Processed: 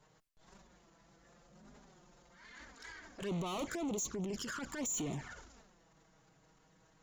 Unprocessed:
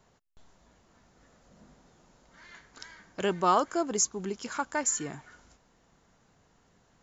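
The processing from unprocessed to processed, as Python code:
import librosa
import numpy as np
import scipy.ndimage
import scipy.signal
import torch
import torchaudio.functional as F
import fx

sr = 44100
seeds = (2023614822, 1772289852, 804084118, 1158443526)

y = fx.transient(x, sr, attack_db=-9, sustain_db=10)
y = fx.tube_stage(y, sr, drive_db=35.0, bias=0.25)
y = fx.env_flanger(y, sr, rest_ms=7.3, full_db=-35.5)
y = F.gain(torch.from_numpy(y), 1.0).numpy()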